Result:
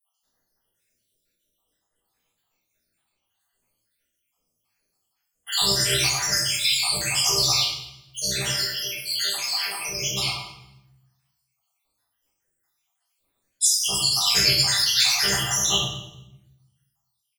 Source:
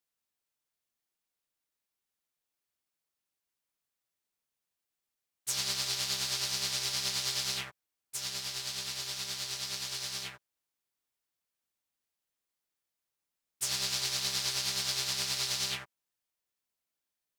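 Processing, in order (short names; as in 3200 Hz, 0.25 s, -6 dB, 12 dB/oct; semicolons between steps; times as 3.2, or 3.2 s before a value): random spectral dropouts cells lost 82%; 8.42–9.88 HPF 400 Hz 12 dB/oct; feedback echo 0.214 s, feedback 17%, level -20 dB; shoebox room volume 210 m³, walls mixed, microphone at 4.9 m; gain +7.5 dB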